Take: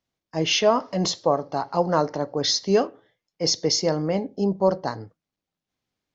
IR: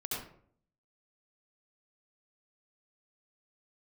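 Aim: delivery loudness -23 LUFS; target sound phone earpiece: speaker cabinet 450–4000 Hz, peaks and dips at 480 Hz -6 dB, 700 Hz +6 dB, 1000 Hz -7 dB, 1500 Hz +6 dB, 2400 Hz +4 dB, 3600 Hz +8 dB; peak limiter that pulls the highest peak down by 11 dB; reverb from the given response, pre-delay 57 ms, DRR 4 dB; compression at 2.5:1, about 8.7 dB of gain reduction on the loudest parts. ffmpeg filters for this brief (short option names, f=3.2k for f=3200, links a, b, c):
-filter_complex "[0:a]acompressor=threshold=-27dB:ratio=2.5,alimiter=level_in=1dB:limit=-24dB:level=0:latency=1,volume=-1dB,asplit=2[a][b];[1:a]atrim=start_sample=2205,adelay=57[c];[b][c]afir=irnorm=-1:irlink=0,volume=-6.5dB[d];[a][d]amix=inputs=2:normalize=0,highpass=450,equalizer=f=480:t=q:w=4:g=-6,equalizer=f=700:t=q:w=4:g=6,equalizer=f=1k:t=q:w=4:g=-7,equalizer=f=1.5k:t=q:w=4:g=6,equalizer=f=2.4k:t=q:w=4:g=4,equalizer=f=3.6k:t=q:w=4:g=8,lowpass=f=4k:w=0.5412,lowpass=f=4k:w=1.3066,volume=13.5dB"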